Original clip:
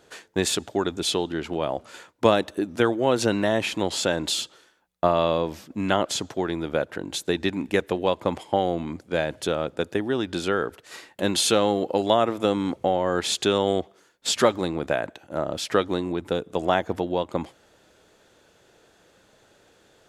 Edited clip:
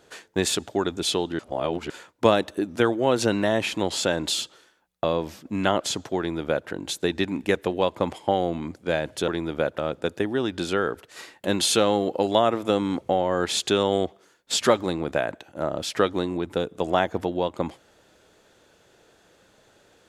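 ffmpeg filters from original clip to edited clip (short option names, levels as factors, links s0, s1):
-filter_complex "[0:a]asplit=6[s0][s1][s2][s3][s4][s5];[s0]atrim=end=1.392[s6];[s1]atrim=start=1.388:end=1.902,asetpts=PTS-STARTPTS,areverse[s7];[s2]atrim=start=1.898:end=5.042[s8];[s3]atrim=start=5.288:end=9.532[s9];[s4]atrim=start=6.428:end=6.932[s10];[s5]atrim=start=9.528[s11];[s6][s7]acrossfade=d=0.004:c1=hsin:c2=hsin[s12];[s12][s8]acrossfade=d=0.004:c1=hsin:c2=hsin[s13];[s13][s9]acrossfade=d=0.004:c1=hsin:c2=hsin[s14];[s14][s10]acrossfade=d=0.004:c1=hsin:c2=hsin[s15];[s15][s11]acrossfade=d=0.004:c1=hsin:c2=hsin"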